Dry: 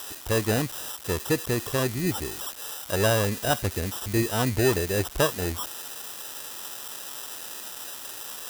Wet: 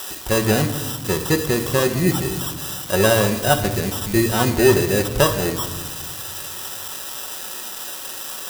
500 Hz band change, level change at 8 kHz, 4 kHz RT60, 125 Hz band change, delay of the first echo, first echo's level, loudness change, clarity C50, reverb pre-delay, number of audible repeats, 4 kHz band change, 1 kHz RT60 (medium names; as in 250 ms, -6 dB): +7.5 dB, +6.5 dB, 0.80 s, +6.0 dB, no echo, no echo, +7.0 dB, 10.5 dB, 5 ms, no echo, +7.0 dB, 1.2 s